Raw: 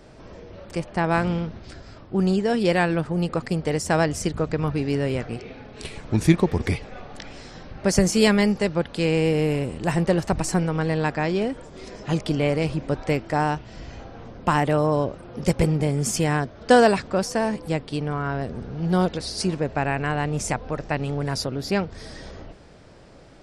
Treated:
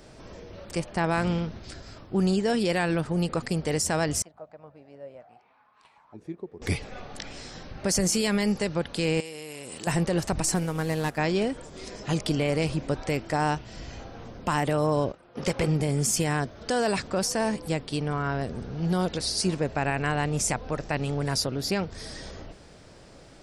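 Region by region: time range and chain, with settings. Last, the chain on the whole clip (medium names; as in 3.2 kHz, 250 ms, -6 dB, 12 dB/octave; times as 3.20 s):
4.22–6.62 s: peaking EQ 430 Hz -12 dB 1.2 oct + auto-wah 400–1200 Hz, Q 5.8, down, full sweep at -20 dBFS
9.20–9.87 s: high-pass 490 Hz 6 dB/octave + treble shelf 3.7 kHz +10.5 dB + compression 16:1, threshold -33 dBFS
10.55–11.18 s: CVSD coder 64 kbps + upward expansion, over -31 dBFS
15.12–15.68 s: gate -38 dBFS, range -14 dB + treble shelf 10 kHz -7.5 dB + overdrive pedal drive 12 dB, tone 2.6 kHz, clips at -7 dBFS
whole clip: treble shelf 4.3 kHz +9 dB; peak limiter -13.5 dBFS; trim -2 dB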